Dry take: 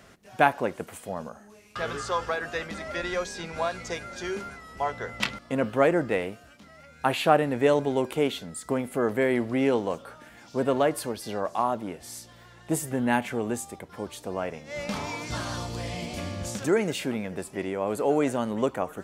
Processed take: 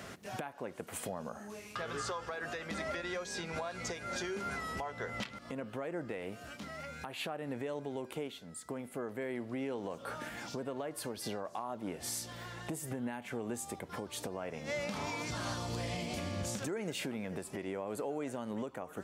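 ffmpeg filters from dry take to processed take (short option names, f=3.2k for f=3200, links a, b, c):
-filter_complex "[0:a]asplit=3[a][b][c];[a]atrim=end=8.42,asetpts=PTS-STARTPTS,afade=t=out:st=8.06:d=0.36:silence=0.188365[d];[b]atrim=start=8.42:end=9.68,asetpts=PTS-STARTPTS,volume=-14.5dB[e];[c]atrim=start=9.68,asetpts=PTS-STARTPTS,afade=t=in:d=0.36:silence=0.188365[f];[d][e][f]concat=n=3:v=0:a=1,acompressor=threshold=-37dB:ratio=8,alimiter=level_in=10dB:limit=-24dB:level=0:latency=1:release=269,volume=-10dB,highpass=71,volume=6dB"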